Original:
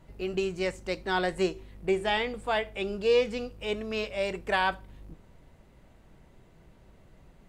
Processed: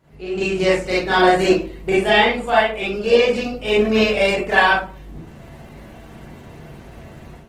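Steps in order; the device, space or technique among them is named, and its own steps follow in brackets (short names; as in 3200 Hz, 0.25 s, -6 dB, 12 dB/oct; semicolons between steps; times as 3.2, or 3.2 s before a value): far-field microphone of a smart speaker (reverb RT60 0.40 s, pre-delay 33 ms, DRR -7.5 dB; HPF 140 Hz 6 dB/oct; AGC gain up to 13 dB; gain -1 dB; Opus 16 kbps 48000 Hz)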